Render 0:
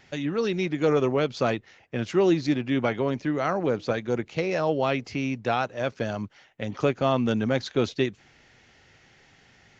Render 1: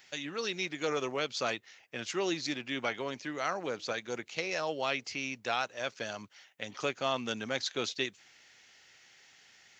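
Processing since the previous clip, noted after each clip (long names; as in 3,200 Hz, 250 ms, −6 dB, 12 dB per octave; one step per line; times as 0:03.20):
spectral tilt +4 dB per octave
level −6.5 dB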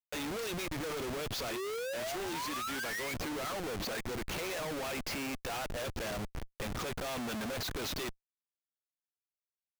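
sound drawn into the spectrogram rise, 0:01.51–0:03.14, 340–2,300 Hz −38 dBFS
comparator with hysteresis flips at −46 dBFS
level −1 dB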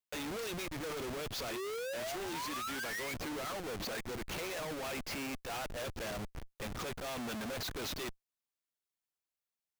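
brickwall limiter −39.5 dBFS, peak gain reduction 8.5 dB
level +1 dB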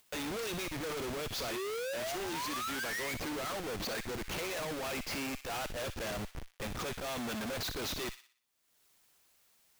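upward compression, threshold −52 dBFS
delay with a high-pass on its return 60 ms, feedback 43%, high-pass 1,900 Hz, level −8 dB
level +2 dB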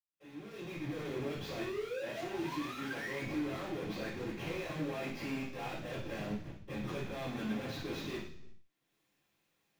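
fade in at the beginning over 1.02 s
convolution reverb, pre-delay 76 ms
level +5.5 dB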